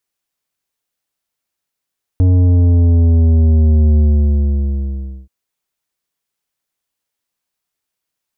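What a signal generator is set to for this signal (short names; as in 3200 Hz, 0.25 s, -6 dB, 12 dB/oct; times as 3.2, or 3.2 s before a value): sub drop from 92 Hz, over 3.08 s, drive 10 dB, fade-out 1.30 s, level -8.5 dB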